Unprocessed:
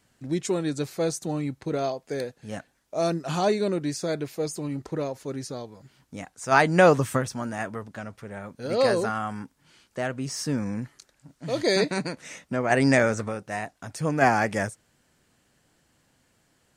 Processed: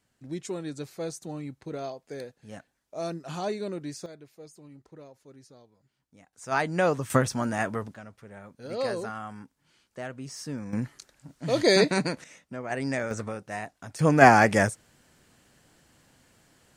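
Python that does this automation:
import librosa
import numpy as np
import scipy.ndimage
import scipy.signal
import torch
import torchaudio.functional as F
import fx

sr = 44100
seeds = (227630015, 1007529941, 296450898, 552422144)

y = fx.gain(x, sr, db=fx.steps((0.0, -8.0), (4.06, -18.5), (6.33, -7.5), (7.1, 3.0), (7.94, -8.0), (10.73, 2.5), (12.24, -10.0), (13.11, -3.5), (13.99, 5.0)))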